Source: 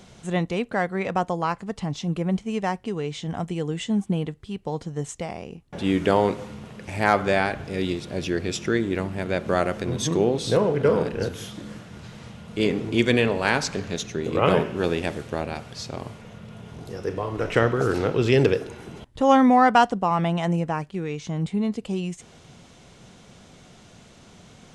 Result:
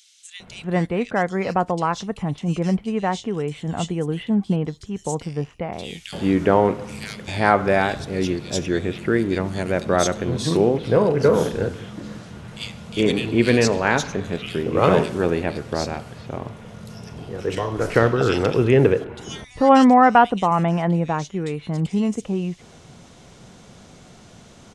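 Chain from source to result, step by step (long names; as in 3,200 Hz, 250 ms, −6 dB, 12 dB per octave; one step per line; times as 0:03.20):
multiband delay without the direct sound highs, lows 400 ms, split 2,700 Hz
level +3.5 dB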